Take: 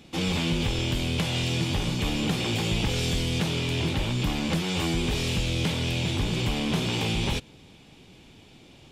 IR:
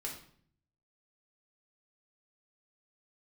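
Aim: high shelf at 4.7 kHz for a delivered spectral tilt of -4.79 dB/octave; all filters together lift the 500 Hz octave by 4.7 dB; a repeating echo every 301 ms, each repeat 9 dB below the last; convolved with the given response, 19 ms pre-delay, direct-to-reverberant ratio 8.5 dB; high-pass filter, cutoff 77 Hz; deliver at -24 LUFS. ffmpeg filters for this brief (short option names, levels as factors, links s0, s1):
-filter_complex "[0:a]highpass=77,equalizer=f=500:t=o:g=6,highshelf=f=4700:g=-3.5,aecho=1:1:301|602|903|1204:0.355|0.124|0.0435|0.0152,asplit=2[s0][s1];[1:a]atrim=start_sample=2205,adelay=19[s2];[s1][s2]afir=irnorm=-1:irlink=0,volume=0.398[s3];[s0][s3]amix=inputs=2:normalize=0,volume=1.12"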